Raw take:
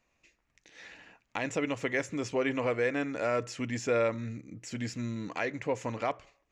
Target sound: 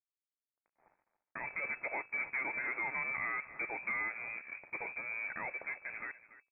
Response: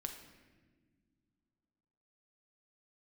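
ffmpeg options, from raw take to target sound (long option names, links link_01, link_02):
-filter_complex "[0:a]acompressor=threshold=-33dB:ratio=8,equalizer=frequency=320:width=2.7:gain=9,aresample=11025,aeval=exprs='sgn(val(0))*max(abs(val(0))-0.00355,0)':channel_layout=same,aresample=44100,agate=range=-12dB:threshold=-53dB:ratio=16:detection=peak,lowshelf=frequency=440:gain=-12,bandreject=frequency=60:width_type=h:width=6,bandreject=frequency=120:width_type=h:width=6,bandreject=frequency=180:width_type=h:width=6,bandreject=frequency=240:width_type=h:width=6,bandreject=frequency=300:width_type=h:width=6,asoftclip=type=hard:threshold=-38dB,dynaudnorm=framelen=230:gausssize=11:maxgain=6dB,aeval=exprs='0.0251*(cos(1*acos(clip(val(0)/0.0251,-1,1)))-cos(1*PI/2))+0.000562*(cos(6*acos(clip(val(0)/0.0251,-1,1)))-cos(6*PI/2))+0.00112*(cos(8*acos(clip(val(0)/0.0251,-1,1)))-cos(8*PI/2))':channel_layout=same,lowpass=frequency=2200:width_type=q:width=0.5098,lowpass=frequency=2200:width_type=q:width=0.6013,lowpass=frequency=2200:width_type=q:width=0.9,lowpass=frequency=2200:width_type=q:width=2.563,afreqshift=-2600,asplit=2[link_01][link_02];[link_02]aecho=0:1:286:0.158[link_03];[link_01][link_03]amix=inputs=2:normalize=0"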